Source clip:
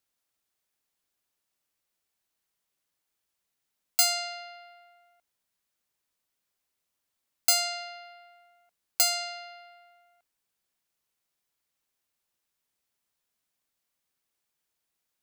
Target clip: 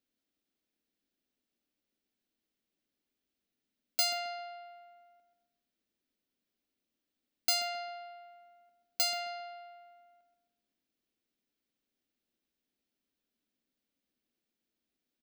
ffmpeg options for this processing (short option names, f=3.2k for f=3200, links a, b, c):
-filter_complex "[0:a]equalizer=f=125:t=o:w=1:g=-8,equalizer=f=250:t=o:w=1:g=12,equalizer=f=1k:t=o:w=1:g=-11,equalizer=f=2k:t=o:w=1:g=-3,equalizer=f=8k:t=o:w=1:g=-9,equalizer=f=16k:t=o:w=1:g=-10,asplit=2[a][b];[b]adelay=133,lowpass=f=1.7k:p=1,volume=-7dB,asplit=2[c][d];[d]adelay=133,lowpass=f=1.7k:p=1,volume=0.42,asplit=2[e][f];[f]adelay=133,lowpass=f=1.7k:p=1,volume=0.42,asplit=2[g][h];[h]adelay=133,lowpass=f=1.7k:p=1,volume=0.42,asplit=2[i][j];[j]adelay=133,lowpass=f=1.7k:p=1,volume=0.42[k];[a][c][e][g][i][k]amix=inputs=6:normalize=0"